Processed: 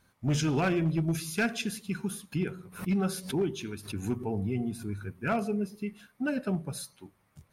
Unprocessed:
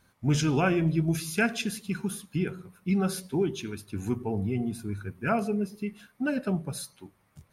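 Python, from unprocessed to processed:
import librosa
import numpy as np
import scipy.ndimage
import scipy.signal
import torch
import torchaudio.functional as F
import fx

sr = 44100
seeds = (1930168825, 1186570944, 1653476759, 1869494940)

y = np.clip(10.0 ** (19.5 / 20.0) * x, -1.0, 1.0) / 10.0 ** (19.5 / 20.0)
y = fx.pre_swell(y, sr, db_per_s=140.0, at=(2.32, 5.07), fade=0.02)
y = y * librosa.db_to_amplitude(-2.0)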